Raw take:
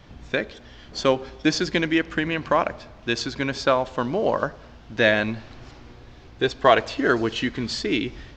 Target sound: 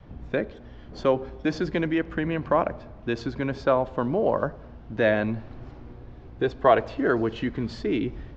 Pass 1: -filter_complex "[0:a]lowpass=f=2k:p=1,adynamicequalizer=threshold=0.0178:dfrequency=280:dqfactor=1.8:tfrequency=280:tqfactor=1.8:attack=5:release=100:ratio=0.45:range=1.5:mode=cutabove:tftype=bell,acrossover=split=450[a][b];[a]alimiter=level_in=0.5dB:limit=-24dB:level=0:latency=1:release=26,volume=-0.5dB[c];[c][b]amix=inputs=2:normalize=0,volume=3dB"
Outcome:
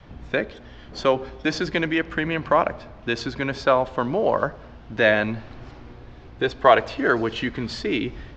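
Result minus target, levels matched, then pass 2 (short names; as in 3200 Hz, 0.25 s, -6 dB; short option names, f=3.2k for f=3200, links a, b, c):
2000 Hz band +4.5 dB
-filter_complex "[0:a]lowpass=f=580:p=1,adynamicequalizer=threshold=0.0178:dfrequency=280:dqfactor=1.8:tfrequency=280:tqfactor=1.8:attack=5:release=100:ratio=0.45:range=1.5:mode=cutabove:tftype=bell,acrossover=split=450[a][b];[a]alimiter=level_in=0.5dB:limit=-24dB:level=0:latency=1:release=26,volume=-0.5dB[c];[c][b]amix=inputs=2:normalize=0,volume=3dB"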